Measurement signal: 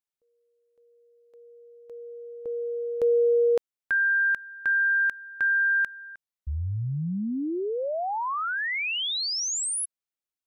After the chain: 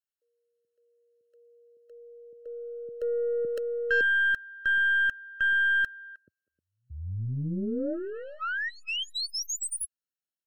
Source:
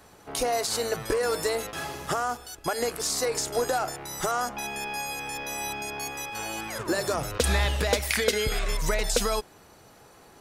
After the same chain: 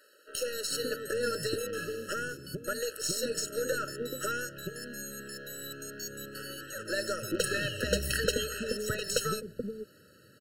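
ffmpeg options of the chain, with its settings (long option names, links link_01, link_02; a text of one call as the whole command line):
ffmpeg -i in.wav -filter_complex "[0:a]highpass=frequency=91:width=0.5412,highpass=frequency=91:width=1.3066,acrossover=split=420[link_01][link_02];[link_01]adelay=430[link_03];[link_03][link_02]amix=inputs=2:normalize=0,asplit=2[link_04][link_05];[link_05]asoftclip=type=tanh:threshold=-23.5dB,volume=-8.5dB[link_06];[link_04][link_06]amix=inputs=2:normalize=0,aeval=exprs='0.355*(cos(1*acos(clip(val(0)/0.355,-1,1)))-cos(1*PI/2))+0.02*(cos(4*acos(clip(val(0)/0.355,-1,1)))-cos(4*PI/2))+0.0158*(cos(7*acos(clip(val(0)/0.355,-1,1)))-cos(7*PI/2))+0.00316*(cos(8*acos(clip(val(0)/0.355,-1,1)))-cos(8*PI/2))':channel_layout=same,afftfilt=real='re*eq(mod(floor(b*sr/1024/640),2),0)':imag='im*eq(mod(floor(b*sr/1024/640),2),0)':win_size=1024:overlap=0.75,volume=-2dB" out.wav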